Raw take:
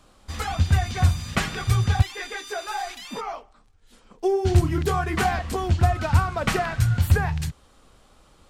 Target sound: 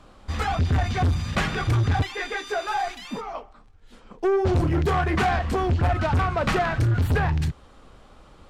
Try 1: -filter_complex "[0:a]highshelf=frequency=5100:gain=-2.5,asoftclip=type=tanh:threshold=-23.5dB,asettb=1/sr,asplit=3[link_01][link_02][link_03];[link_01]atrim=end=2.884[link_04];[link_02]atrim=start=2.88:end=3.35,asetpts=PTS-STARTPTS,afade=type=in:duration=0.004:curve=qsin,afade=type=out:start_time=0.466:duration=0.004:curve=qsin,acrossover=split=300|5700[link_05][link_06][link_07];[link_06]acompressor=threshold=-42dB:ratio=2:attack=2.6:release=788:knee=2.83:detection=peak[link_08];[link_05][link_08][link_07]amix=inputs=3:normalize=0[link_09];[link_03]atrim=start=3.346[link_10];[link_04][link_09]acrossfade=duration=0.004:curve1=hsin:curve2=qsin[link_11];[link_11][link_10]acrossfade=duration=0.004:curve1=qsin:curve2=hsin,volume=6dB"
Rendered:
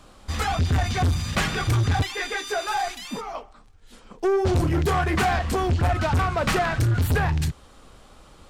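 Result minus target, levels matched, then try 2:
8,000 Hz band +7.0 dB
-filter_complex "[0:a]highshelf=frequency=5100:gain=-14.5,asoftclip=type=tanh:threshold=-23.5dB,asettb=1/sr,asplit=3[link_01][link_02][link_03];[link_01]atrim=end=2.884[link_04];[link_02]atrim=start=2.88:end=3.35,asetpts=PTS-STARTPTS,afade=type=in:duration=0.004:curve=qsin,afade=type=out:start_time=0.466:duration=0.004:curve=qsin,acrossover=split=300|5700[link_05][link_06][link_07];[link_06]acompressor=threshold=-42dB:ratio=2:attack=2.6:release=788:knee=2.83:detection=peak[link_08];[link_05][link_08][link_07]amix=inputs=3:normalize=0[link_09];[link_03]atrim=start=3.346[link_10];[link_04][link_09]acrossfade=duration=0.004:curve1=hsin:curve2=qsin[link_11];[link_11][link_10]acrossfade=duration=0.004:curve1=qsin:curve2=hsin,volume=6dB"

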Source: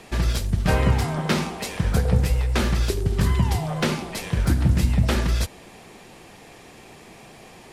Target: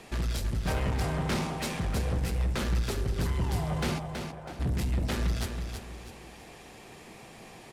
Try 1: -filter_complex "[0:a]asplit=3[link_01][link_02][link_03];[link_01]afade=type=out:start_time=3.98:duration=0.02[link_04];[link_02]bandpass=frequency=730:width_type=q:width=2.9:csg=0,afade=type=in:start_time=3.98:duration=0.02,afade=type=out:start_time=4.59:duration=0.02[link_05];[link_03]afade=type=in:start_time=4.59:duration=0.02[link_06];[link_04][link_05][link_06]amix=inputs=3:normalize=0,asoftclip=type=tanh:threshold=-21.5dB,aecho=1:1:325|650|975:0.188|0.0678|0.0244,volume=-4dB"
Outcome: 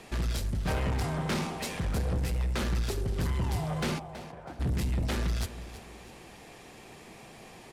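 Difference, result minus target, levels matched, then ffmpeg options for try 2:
echo-to-direct −8 dB
-filter_complex "[0:a]asplit=3[link_01][link_02][link_03];[link_01]afade=type=out:start_time=3.98:duration=0.02[link_04];[link_02]bandpass=frequency=730:width_type=q:width=2.9:csg=0,afade=type=in:start_time=3.98:duration=0.02,afade=type=out:start_time=4.59:duration=0.02[link_05];[link_03]afade=type=in:start_time=4.59:duration=0.02[link_06];[link_04][link_05][link_06]amix=inputs=3:normalize=0,asoftclip=type=tanh:threshold=-21.5dB,aecho=1:1:325|650|975|1300:0.473|0.17|0.0613|0.0221,volume=-4dB"

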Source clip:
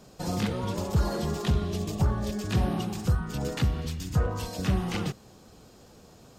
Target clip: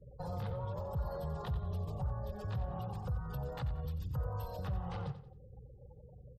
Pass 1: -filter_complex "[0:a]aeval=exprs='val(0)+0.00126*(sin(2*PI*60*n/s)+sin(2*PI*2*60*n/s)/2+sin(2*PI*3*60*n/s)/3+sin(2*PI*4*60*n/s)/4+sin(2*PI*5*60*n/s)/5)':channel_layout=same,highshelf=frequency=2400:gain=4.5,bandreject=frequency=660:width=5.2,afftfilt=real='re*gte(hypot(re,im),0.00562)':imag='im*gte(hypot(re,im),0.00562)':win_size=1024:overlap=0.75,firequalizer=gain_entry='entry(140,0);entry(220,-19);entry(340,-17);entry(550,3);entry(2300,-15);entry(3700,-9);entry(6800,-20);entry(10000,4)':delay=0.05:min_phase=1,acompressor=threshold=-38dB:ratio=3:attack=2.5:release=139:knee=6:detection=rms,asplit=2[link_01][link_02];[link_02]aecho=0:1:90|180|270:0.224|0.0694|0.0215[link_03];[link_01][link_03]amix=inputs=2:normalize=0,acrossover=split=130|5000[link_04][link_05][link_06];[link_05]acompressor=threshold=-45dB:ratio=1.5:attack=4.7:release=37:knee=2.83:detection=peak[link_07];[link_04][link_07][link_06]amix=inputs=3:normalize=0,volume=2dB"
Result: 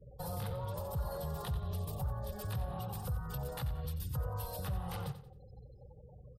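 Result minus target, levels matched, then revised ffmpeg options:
4,000 Hz band +6.0 dB
-filter_complex "[0:a]aeval=exprs='val(0)+0.00126*(sin(2*PI*60*n/s)+sin(2*PI*2*60*n/s)/2+sin(2*PI*3*60*n/s)/3+sin(2*PI*4*60*n/s)/4+sin(2*PI*5*60*n/s)/5)':channel_layout=same,highshelf=frequency=2400:gain=-4.5,bandreject=frequency=660:width=5.2,afftfilt=real='re*gte(hypot(re,im),0.00562)':imag='im*gte(hypot(re,im),0.00562)':win_size=1024:overlap=0.75,firequalizer=gain_entry='entry(140,0);entry(220,-19);entry(340,-17);entry(550,3);entry(2300,-15);entry(3700,-9);entry(6800,-20);entry(10000,4)':delay=0.05:min_phase=1,acompressor=threshold=-38dB:ratio=3:attack=2.5:release=139:knee=6:detection=rms,asplit=2[link_01][link_02];[link_02]aecho=0:1:90|180|270:0.224|0.0694|0.0215[link_03];[link_01][link_03]amix=inputs=2:normalize=0,acrossover=split=130|5000[link_04][link_05][link_06];[link_05]acompressor=threshold=-45dB:ratio=1.5:attack=4.7:release=37:knee=2.83:detection=peak[link_07];[link_04][link_07][link_06]amix=inputs=3:normalize=0,volume=2dB"

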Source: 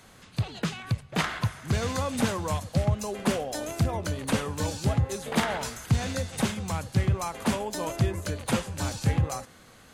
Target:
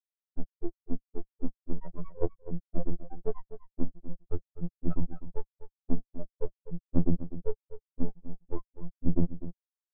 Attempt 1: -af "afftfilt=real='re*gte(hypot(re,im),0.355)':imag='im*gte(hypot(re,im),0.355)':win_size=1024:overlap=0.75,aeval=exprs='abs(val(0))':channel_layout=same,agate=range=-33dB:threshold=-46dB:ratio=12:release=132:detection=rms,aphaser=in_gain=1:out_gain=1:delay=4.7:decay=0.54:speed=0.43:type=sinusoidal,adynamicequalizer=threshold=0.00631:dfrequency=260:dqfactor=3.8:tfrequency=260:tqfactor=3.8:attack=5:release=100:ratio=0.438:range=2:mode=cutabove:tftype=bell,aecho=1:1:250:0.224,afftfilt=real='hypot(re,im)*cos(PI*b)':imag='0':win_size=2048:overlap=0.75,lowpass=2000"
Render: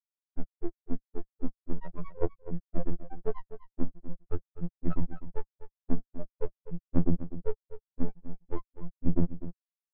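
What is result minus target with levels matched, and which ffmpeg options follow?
2,000 Hz band +9.5 dB
-af "afftfilt=real='re*gte(hypot(re,im),0.355)':imag='im*gte(hypot(re,im),0.355)':win_size=1024:overlap=0.75,aeval=exprs='abs(val(0))':channel_layout=same,agate=range=-33dB:threshold=-46dB:ratio=12:release=132:detection=rms,aphaser=in_gain=1:out_gain=1:delay=4.7:decay=0.54:speed=0.43:type=sinusoidal,adynamicequalizer=threshold=0.00631:dfrequency=260:dqfactor=3.8:tfrequency=260:tqfactor=3.8:attack=5:release=100:ratio=0.438:range=2:mode=cutabove:tftype=bell,aecho=1:1:250:0.224,afftfilt=real='hypot(re,im)*cos(PI*b)':imag='0':win_size=2048:overlap=0.75,lowpass=900"

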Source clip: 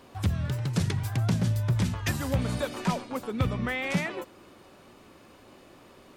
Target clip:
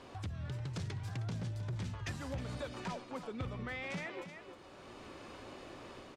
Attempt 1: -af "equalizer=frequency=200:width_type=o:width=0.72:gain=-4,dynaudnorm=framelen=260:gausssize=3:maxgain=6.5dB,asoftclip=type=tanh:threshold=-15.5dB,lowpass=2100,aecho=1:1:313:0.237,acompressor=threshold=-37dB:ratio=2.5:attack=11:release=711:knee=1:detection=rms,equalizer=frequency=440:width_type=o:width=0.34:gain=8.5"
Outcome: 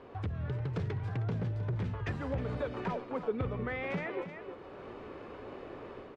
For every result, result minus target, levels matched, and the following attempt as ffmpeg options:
8,000 Hz band −19.0 dB; downward compressor: peak gain reduction −5 dB; 500 Hz band +3.5 dB
-af "equalizer=frequency=200:width_type=o:width=0.72:gain=-4,dynaudnorm=framelen=260:gausssize=3:maxgain=6.5dB,asoftclip=type=tanh:threshold=-15.5dB,lowpass=7100,aecho=1:1:313:0.237,acompressor=threshold=-37dB:ratio=2.5:attack=11:release=711:knee=1:detection=rms,equalizer=frequency=440:width_type=o:width=0.34:gain=8.5"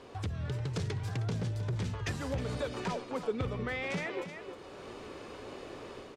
downward compressor: peak gain reduction −5 dB; 500 Hz band +3.0 dB
-af "equalizer=frequency=200:width_type=o:width=0.72:gain=-4,dynaudnorm=framelen=260:gausssize=3:maxgain=6.5dB,asoftclip=type=tanh:threshold=-15.5dB,lowpass=7100,aecho=1:1:313:0.237,acompressor=threshold=-45.5dB:ratio=2.5:attack=11:release=711:knee=1:detection=rms,equalizer=frequency=440:width_type=o:width=0.34:gain=8.5"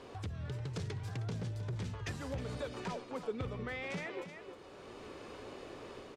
500 Hz band +3.0 dB
-af "equalizer=frequency=200:width_type=o:width=0.72:gain=-4,dynaudnorm=framelen=260:gausssize=3:maxgain=6.5dB,asoftclip=type=tanh:threshold=-15.5dB,lowpass=7100,aecho=1:1:313:0.237,acompressor=threshold=-45.5dB:ratio=2.5:attack=11:release=711:knee=1:detection=rms"

